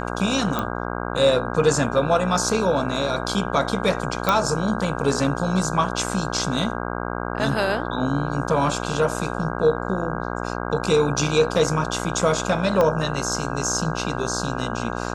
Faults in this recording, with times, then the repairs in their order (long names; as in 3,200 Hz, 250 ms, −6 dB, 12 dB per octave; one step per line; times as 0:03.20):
mains buzz 60 Hz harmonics 27 −28 dBFS
0:00.59: click −10 dBFS
0:04.29: click −5 dBFS
0:12.81: click −8 dBFS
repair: click removal
hum removal 60 Hz, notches 27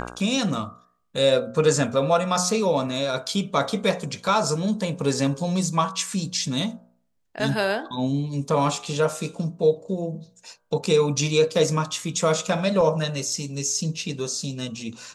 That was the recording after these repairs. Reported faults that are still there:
0:12.81: click